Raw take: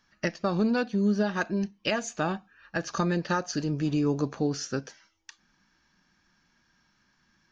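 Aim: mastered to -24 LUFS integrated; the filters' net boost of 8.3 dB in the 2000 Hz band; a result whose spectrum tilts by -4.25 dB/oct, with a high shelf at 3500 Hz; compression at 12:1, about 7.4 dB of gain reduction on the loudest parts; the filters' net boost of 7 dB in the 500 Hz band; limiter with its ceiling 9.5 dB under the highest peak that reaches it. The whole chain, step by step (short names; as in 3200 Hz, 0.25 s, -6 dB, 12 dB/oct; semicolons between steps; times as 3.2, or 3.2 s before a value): bell 500 Hz +8 dB; bell 2000 Hz +8.5 dB; high shelf 3500 Hz +8 dB; compressor 12:1, threshold -24 dBFS; gain +8 dB; limiter -13.5 dBFS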